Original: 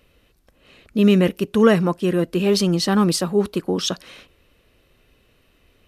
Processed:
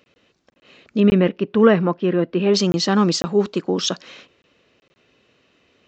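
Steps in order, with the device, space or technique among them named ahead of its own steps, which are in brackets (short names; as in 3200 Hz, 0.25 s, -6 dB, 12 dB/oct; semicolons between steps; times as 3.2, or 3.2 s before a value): call with lost packets (HPF 160 Hz 12 dB/oct; downsampling 16000 Hz; packet loss packets of 20 ms random); 1–2.54 Bessel low-pass 2600 Hz, order 4; gain +1.5 dB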